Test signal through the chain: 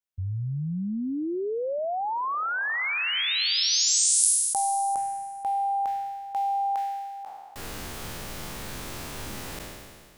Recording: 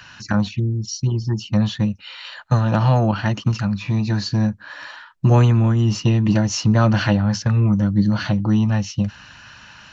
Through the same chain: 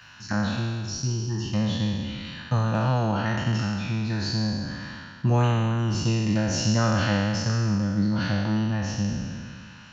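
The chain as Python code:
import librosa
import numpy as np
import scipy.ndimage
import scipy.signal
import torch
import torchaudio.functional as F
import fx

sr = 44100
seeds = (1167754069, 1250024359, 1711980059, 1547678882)

y = fx.spec_trails(x, sr, decay_s=1.87)
y = y * librosa.db_to_amplitude(-8.5)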